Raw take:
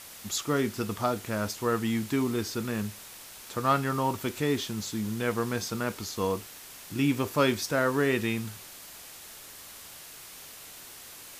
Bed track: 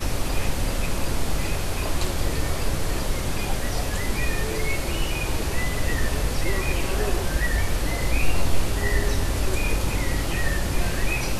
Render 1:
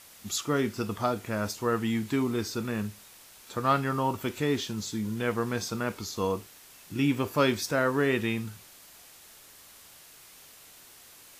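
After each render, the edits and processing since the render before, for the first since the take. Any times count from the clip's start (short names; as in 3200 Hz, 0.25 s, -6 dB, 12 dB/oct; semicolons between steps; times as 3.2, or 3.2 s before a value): noise print and reduce 6 dB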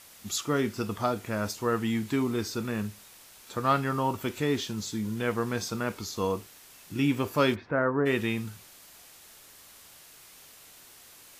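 7.54–8.05 LPF 2500 Hz -> 1300 Hz 24 dB/oct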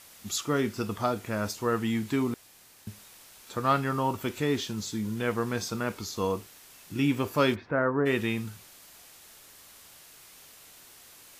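2.34–2.87 room tone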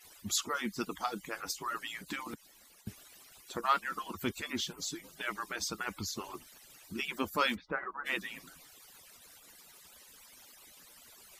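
median-filter separation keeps percussive; dynamic EQ 560 Hz, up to -6 dB, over -47 dBFS, Q 1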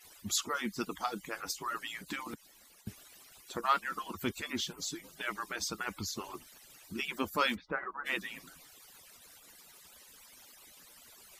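nothing audible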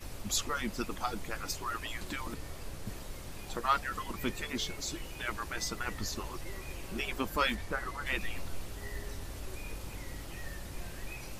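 add bed track -18.5 dB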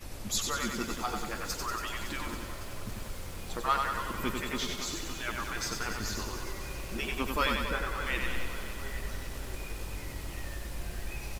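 on a send: feedback echo 94 ms, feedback 58%, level -4.5 dB; on the sum: lo-fi delay 0.28 s, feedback 80%, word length 8-bit, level -12 dB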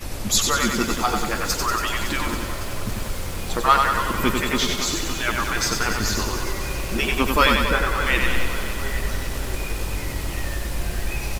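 gain +12 dB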